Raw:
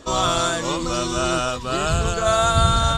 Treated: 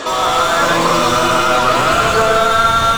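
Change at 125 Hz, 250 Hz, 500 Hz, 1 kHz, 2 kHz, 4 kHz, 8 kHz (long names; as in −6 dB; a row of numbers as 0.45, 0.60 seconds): −2.0, +4.5, +7.5, +10.0, +11.5, +6.0, +3.0 decibels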